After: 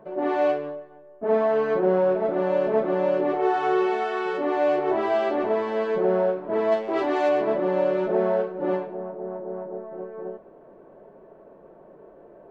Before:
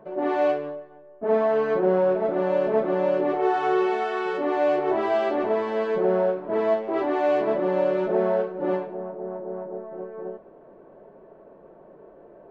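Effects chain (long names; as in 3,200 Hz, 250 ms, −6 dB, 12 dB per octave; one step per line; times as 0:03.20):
0:06.71–0:07.28: high-shelf EQ 2,700 Hz → 3,400 Hz +11.5 dB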